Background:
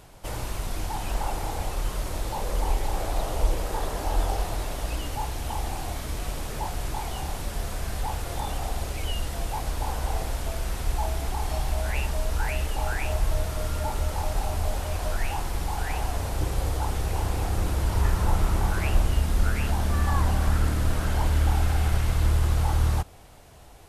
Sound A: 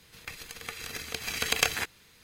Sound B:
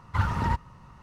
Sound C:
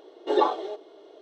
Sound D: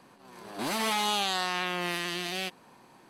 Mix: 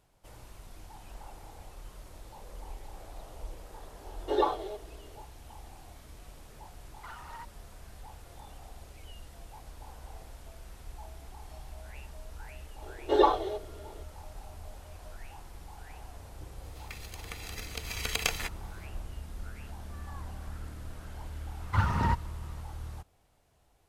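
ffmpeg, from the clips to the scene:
-filter_complex "[3:a]asplit=2[s0][s1];[2:a]asplit=2[s2][s3];[0:a]volume=0.119[s4];[s2]highpass=760[s5];[1:a]bandreject=f=1600:w=8.8[s6];[s0]atrim=end=1.21,asetpts=PTS-STARTPTS,volume=0.562,afade=t=in:d=0.004:c=hsin,afade=t=out:st=1.206:d=0.004:c=hsin,adelay=176841S[s7];[s5]atrim=end=1.02,asetpts=PTS-STARTPTS,volume=0.2,afade=t=in:d=0.004:c=hsin,afade=t=out:st=1.016:d=0.004:c=hsin,adelay=6890[s8];[s1]atrim=end=1.21,asetpts=PTS-STARTPTS,volume=0.944,afade=t=in:d=0.004:c=hsin,afade=t=out:st=1.206:d=0.004:c=hsin,adelay=12820[s9];[s6]atrim=end=2.23,asetpts=PTS-STARTPTS,volume=0.596,afade=t=in:d=0.004:c=hsin,afade=t=out:st=2.226:d=0.004:c=hsin,adelay=16630[s10];[s3]atrim=end=1.02,asetpts=PTS-STARTPTS,volume=0.891,afade=t=in:d=0.004:c=hsin,afade=t=out:st=1.016:d=0.004:c=hsin,adelay=21590[s11];[s4][s7][s8][s9][s10][s11]amix=inputs=6:normalize=0"

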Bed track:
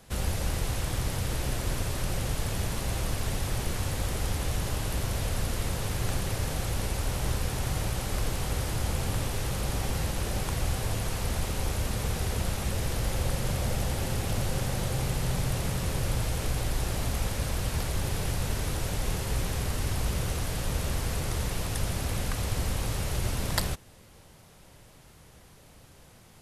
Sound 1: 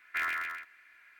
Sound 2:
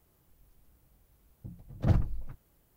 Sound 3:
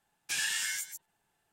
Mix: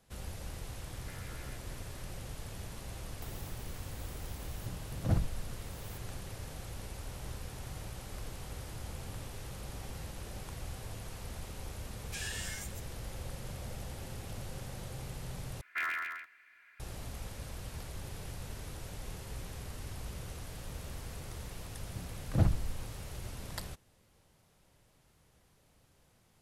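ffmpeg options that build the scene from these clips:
-filter_complex "[1:a]asplit=2[s0][s1];[2:a]asplit=2[s2][s3];[0:a]volume=0.211[s4];[s0]acompressor=threshold=0.00447:ratio=6:attack=3.2:release=140:knee=1:detection=peak[s5];[s2]acompressor=mode=upward:threshold=0.02:ratio=4:attack=18:release=318:knee=2.83:detection=peak[s6];[s1]highpass=47[s7];[s4]asplit=2[s8][s9];[s8]atrim=end=15.614[s10];[s7]atrim=end=1.19,asetpts=PTS-STARTPTS,volume=0.75[s11];[s9]atrim=start=16.796[s12];[s5]atrim=end=1.19,asetpts=PTS-STARTPTS,volume=0.473,afade=t=in:d=0.004:c=hsin,afade=t=out:st=1.186:d=0.004:c=hsin,adelay=940[s13];[s6]atrim=end=2.76,asetpts=PTS-STARTPTS,volume=0.631,afade=t=in:d=0.004:c=hsin,afade=t=out:st=2.756:d=0.004:c=hsin,adelay=3220[s14];[3:a]atrim=end=1.52,asetpts=PTS-STARTPTS,volume=0.355,afade=t=in:d=0.004:c=hsin,afade=t=out:st=1.516:d=0.004:c=hsin,adelay=11830[s15];[s3]atrim=end=2.76,asetpts=PTS-STARTPTS,volume=0.841,afade=t=in:d=0.004:c=hsin,afade=t=out:st=2.756:d=0.004:c=hsin,adelay=20510[s16];[s10][s11]acrossfade=d=0.004:c1=hsin:c2=hsin[s17];[s17][s12]acrossfade=d=0.004:c1=hsin:c2=hsin[s18];[s18][s13][s14][s15][s16]amix=inputs=5:normalize=0"

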